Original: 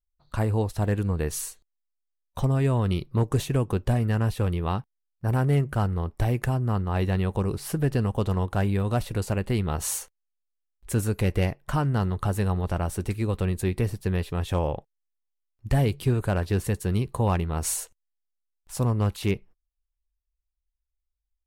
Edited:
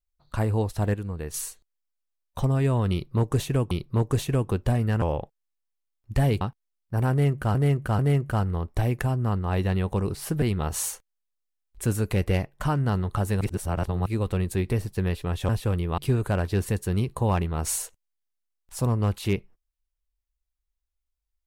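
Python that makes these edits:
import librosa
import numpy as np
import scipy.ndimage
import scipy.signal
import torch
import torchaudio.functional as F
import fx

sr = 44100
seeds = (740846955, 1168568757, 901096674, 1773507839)

y = fx.edit(x, sr, fx.clip_gain(start_s=0.94, length_s=0.4, db=-6.5),
    fx.repeat(start_s=2.92, length_s=0.79, count=2),
    fx.swap(start_s=4.23, length_s=0.49, other_s=14.57, other_length_s=1.39),
    fx.repeat(start_s=5.42, length_s=0.44, count=3),
    fx.cut(start_s=7.85, length_s=1.65),
    fx.reverse_span(start_s=12.49, length_s=0.65), tone=tone)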